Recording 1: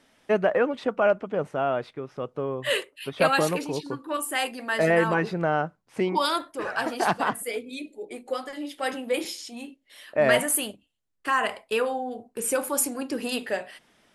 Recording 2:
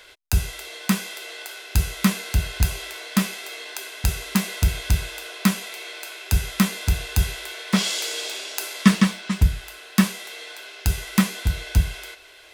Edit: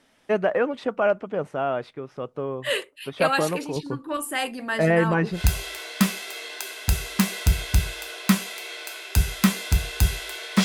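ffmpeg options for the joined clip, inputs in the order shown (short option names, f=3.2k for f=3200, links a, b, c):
-filter_complex "[0:a]asettb=1/sr,asplit=3[a][b][c];[a]atrim=end=3.764[d];[b]atrim=start=3.76:end=5.41,asetpts=PTS-STARTPTS,afade=t=in:d=0.004:c=qsin,afade=t=out:st=1.646:d=0.004:c=qsin,bass=f=250:g=8,treble=f=4k:g=-1[e];[c]atrim=start=5.406[f];[d][e]acrossfade=d=0.004:c1=hsin:c2=qsin[g];[g][f]acrossfade=d=0.004:c1=qsin:c2=hsin,apad=whole_dur=10.64,atrim=end=10.64,atrim=end=5.41,asetpts=PTS-STARTPTS[h];[1:a]atrim=start=2.47:end=7.8,asetpts=PTS-STARTPTS[i];[h][i]acrossfade=d=0.1:c1=tri:c2=tri"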